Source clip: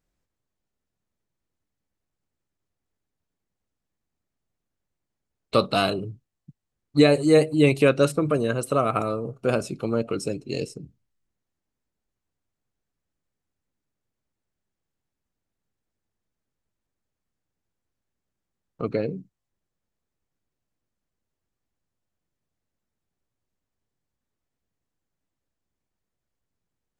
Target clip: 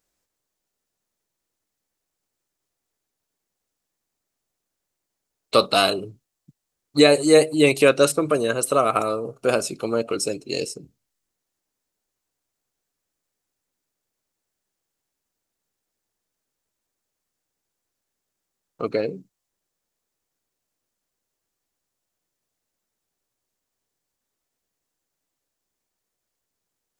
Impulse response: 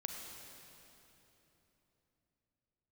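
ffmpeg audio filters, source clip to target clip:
-af "bass=frequency=250:gain=-11,treble=frequency=4000:gain=7,volume=4dB"

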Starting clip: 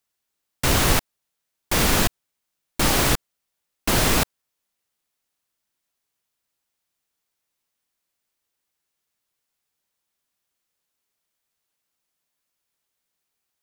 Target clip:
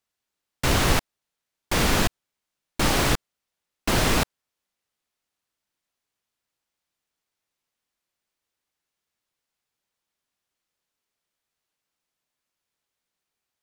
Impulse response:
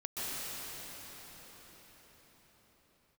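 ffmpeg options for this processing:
-af "highshelf=frequency=8700:gain=-9,volume=-1dB"

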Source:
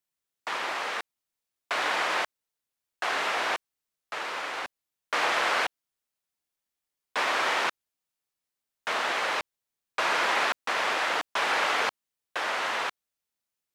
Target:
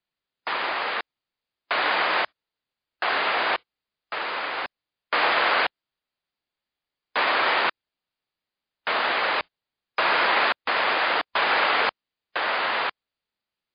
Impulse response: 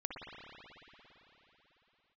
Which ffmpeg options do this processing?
-af "volume=5dB" -ar 11025 -c:a libmp3lame -b:a 48k

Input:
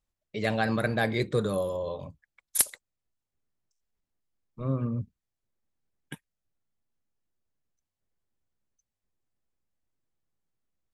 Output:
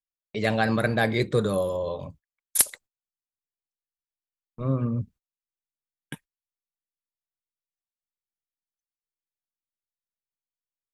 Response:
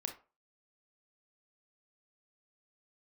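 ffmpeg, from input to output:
-af "agate=range=-27dB:threshold=-51dB:ratio=16:detection=peak,volume=3.5dB"

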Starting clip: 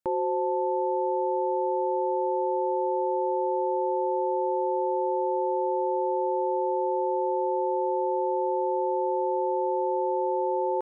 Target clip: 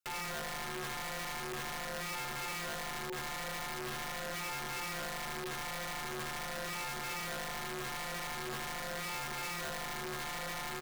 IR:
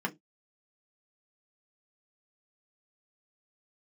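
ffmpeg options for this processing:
-filter_complex "[0:a]acrossover=split=120|250|400[link_01][link_02][link_03][link_04];[link_02]acrusher=bits=5:dc=4:mix=0:aa=0.000001[link_05];[link_01][link_05][link_03][link_04]amix=inputs=4:normalize=0,asplit=2[link_06][link_07];[link_07]adelay=230,highpass=300,lowpass=3400,asoftclip=type=hard:threshold=-28dB,volume=-19dB[link_08];[link_06][link_08]amix=inputs=2:normalize=0,acrossover=split=110|530[link_09][link_10][link_11];[link_09]acompressor=threshold=-53dB:ratio=4[link_12];[link_10]acompressor=threshold=-37dB:ratio=4[link_13];[link_11]acompressor=threshold=-33dB:ratio=4[link_14];[link_12][link_13][link_14]amix=inputs=3:normalize=0,flanger=delay=0.7:depth=3.1:regen=-2:speed=0.43:shape=triangular,alimiter=level_in=10.5dB:limit=-24dB:level=0:latency=1:release=475,volume=-10.5dB,aeval=exprs='(mod(79.4*val(0)+1,2)-1)/79.4':channel_layout=same,volume=3dB"

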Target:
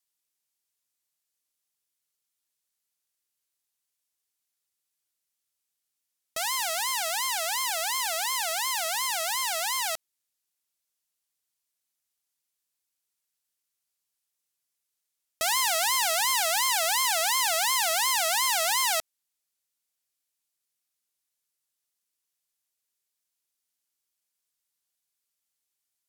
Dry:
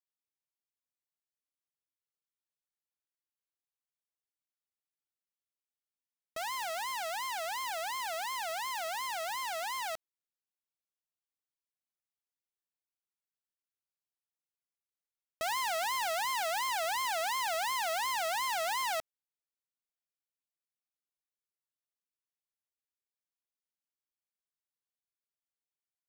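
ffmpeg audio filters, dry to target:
ffmpeg -i in.wav -af "equalizer=frequency=10000:width_type=o:width=2.9:gain=12,volume=3dB" out.wav

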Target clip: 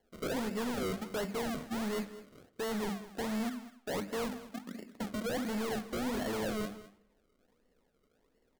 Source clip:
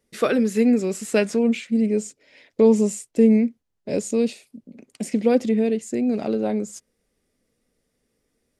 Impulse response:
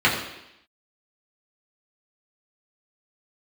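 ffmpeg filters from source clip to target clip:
-filter_complex "[0:a]lowpass=1300,equalizer=frequency=110:width_type=o:width=1.4:gain=-7.5,bandreject=frequency=50:width_type=h:width=6,bandreject=frequency=100:width_type=h:width=6,bandreject=frequency=150:width_type=h:width=6,bandreject=frequency=200:width_type=h:width=6,bandreject=frequency=250:width_type=h:width=6,bandreject=frequency=300:width_type=h:width=6,areverse,acompressor=threshold=-25dB:ratio=6,areverse,acrusher=samples=35:mix=1:aa=0.000001:lfo=1:lforange=35:lforate=1.4,asoftclip=type=hard:threshold=-35.5dB,aecho=1:1:206:0.168,asplit=2[link_01][link_02];[1:a]atrim=start_sample=2205,lowpass=3400[link_03];[link_02][link_03]afir=irnorm=-1:irlink=0,volume=-31dB[link_04];[link_01][link_04]amix=inputs=2:normalize=0,volume=2dB"

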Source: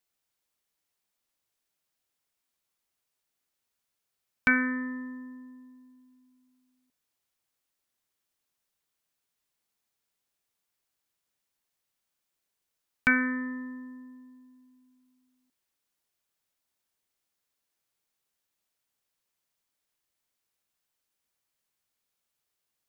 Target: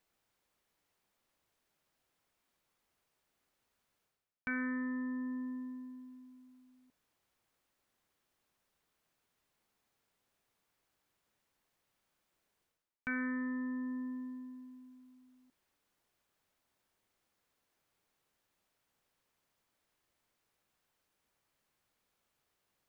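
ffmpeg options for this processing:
ffmpeg -i in.wav -af "highshelf=frequency=2900:gain=-11,areverse,acompressor=threshold=-46dB:ratio=5,areverse,volume=8.5dB" out.wav

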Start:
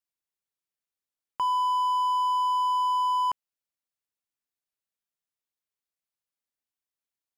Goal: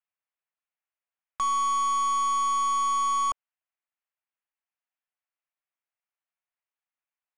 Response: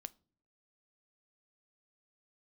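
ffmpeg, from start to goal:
-af "highpass=frequency=480:width_type=q:width=0.5412,highpass=frequency=480:width_type=q:width=1.307,lowpass=frequency=2700:width_type=q:width=0.5176,lowpass=frequency=2700:width_type=q:width=0.7071,lowpass=frequency=2700:width_type=q:width=1.932,afreqshift=120,aeval=exprs='0.0944*(cos(1*acos(clip(val(0)/0.0944,-1,1)))-cos(1*PI/2))+0.00119*(cos(2*acos(clip(val(0)/0.0944,-1,1)))-cos(2*PI/2))+0.00668*(cos(5*acos(clip(val(0)/0.0944,-1,1)))-cos(5*PI/2))+0.000531*(cos(7*acos(clip(val(0)/0.0944,-1,1)))-cos(7*PI/2))+0.0133*(cos(8*acos(clip(val(0)/0.0944,-1,1)))-cos(8*PI/2))':channel_layout=same"

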